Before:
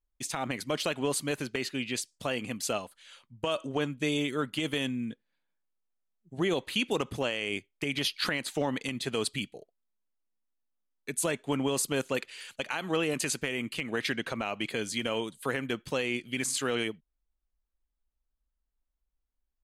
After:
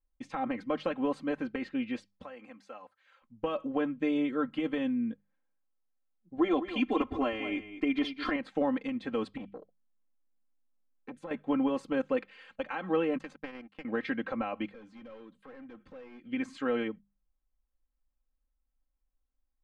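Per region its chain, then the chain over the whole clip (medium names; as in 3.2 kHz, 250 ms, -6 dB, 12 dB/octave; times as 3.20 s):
2.23–3.22 s: high-pass 1.2 kHz 6 dB/octave + peaking EQ 3.1 kHz -7 dB 0.65 oct + compression 2:1, threshold -44 dBFS
6.38–8.36 s: comb 2.9 ms, depth 98% + delay 206 ms -12 dB
9.37–11.31 s: bass shelf 430 Hz +5 dB + compression 5:1, threshold -33 dBFS + transformer saturation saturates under 1.1 kHz
13.18–13.85 s: high-pass 170 Hz + power-law waveshaper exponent 2
14.67–16.26 s: hard clipper -34 dBFS + compression 16:1, threshold -47 dBFS
whole clip: low-pass 1.5 kHz 12 dB/octave; hum notches 50/100/150/200 Hz; comb 3.8 ms, depth 78%; trim -1.5 dB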